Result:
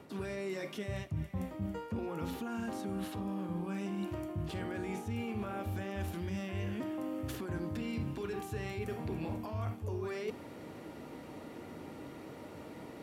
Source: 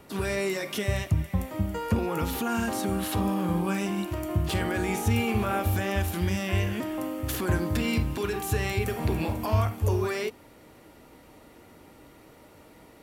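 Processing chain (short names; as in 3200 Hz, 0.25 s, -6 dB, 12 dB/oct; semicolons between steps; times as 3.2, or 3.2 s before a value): HPF 110 Hz 12 dB/oct; high shelf 8800 Hz -10 dB; notches 60/120/180 Hz; reverse; compressor 8:1, threshold -42 dBFS, peak gain reduction 20 dB; reverse; low shelf 470 Hz +6.5 dB; gain +2 dB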